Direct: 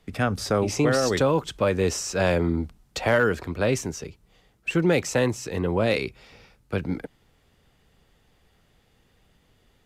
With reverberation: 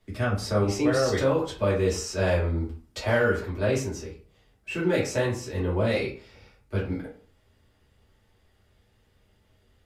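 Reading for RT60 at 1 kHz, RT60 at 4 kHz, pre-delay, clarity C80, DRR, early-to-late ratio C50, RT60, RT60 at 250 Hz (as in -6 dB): 0.45 s, 0.25 s, 3 ms, 12.5 dB, -6.5 dB, 7.0 dB, 0.45 s, 0.45 s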